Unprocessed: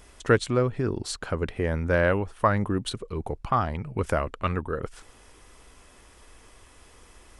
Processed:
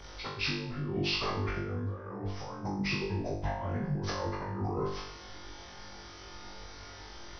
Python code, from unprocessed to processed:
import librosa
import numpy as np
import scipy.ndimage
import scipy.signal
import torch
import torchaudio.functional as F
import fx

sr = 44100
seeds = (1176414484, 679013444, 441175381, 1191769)

y = fx.partial_stretch(x, sr, pct=84)
y = fx.over_compress(y, sr, threshold_db=-36.0, ratio=-1.0)
y = fx.room_flutter(y, sr, wall_m=3.5, rt60_s=0.62)
y = F.gain(torch.from_numpy(y), -3.0).numpy()